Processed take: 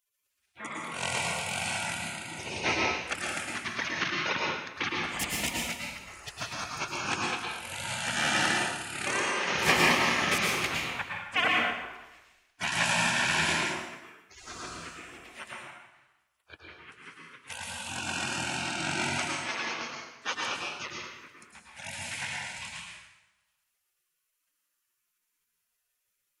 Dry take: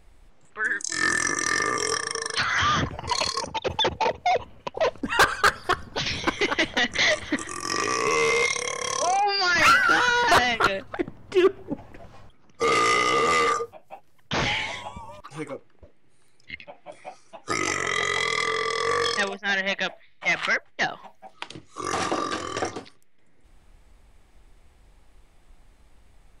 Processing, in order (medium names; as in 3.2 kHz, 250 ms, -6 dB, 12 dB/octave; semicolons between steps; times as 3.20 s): high-pass 180 Hz 12 dB/octave; spectral gate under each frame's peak -25 dB weak; resonant high shelf 3.2 kHz -9 dB, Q 1.5; plate-style reverb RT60 1 s, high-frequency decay 0.85×, pre-delay 95 ms, DRR -2 dB; trim +8.5 dB